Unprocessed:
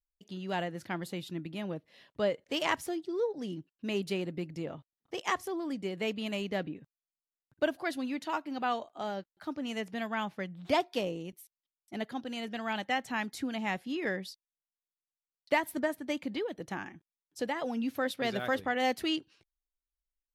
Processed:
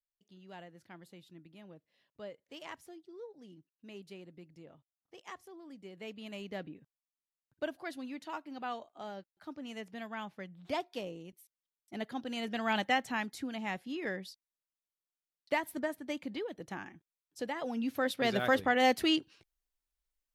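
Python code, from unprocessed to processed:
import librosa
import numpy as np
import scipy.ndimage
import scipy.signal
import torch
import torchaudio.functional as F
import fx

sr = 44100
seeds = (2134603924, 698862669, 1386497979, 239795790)

y = fx.gain(x, sr, db=fx.line((5.57, -16.0), (6.53, -7.5), (11.37, -7.5), (12.79, 3.5), (13.4, -4.0), (17.48, -4.0), (18.44, 3.0)))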